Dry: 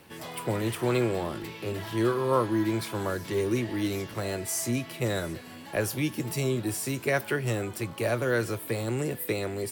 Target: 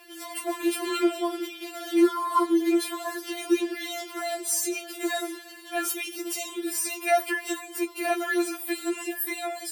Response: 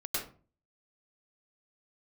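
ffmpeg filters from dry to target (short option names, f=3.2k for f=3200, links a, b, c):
-af "bass=f=250:g=-14,treble=f=4k:g=2,afftfilt=real='re*4*eq(mod(b,16),0)':imag='im*4*eq(mod(b,16),0)':win_size=2048:overlap=0.75,volume=5.5dB"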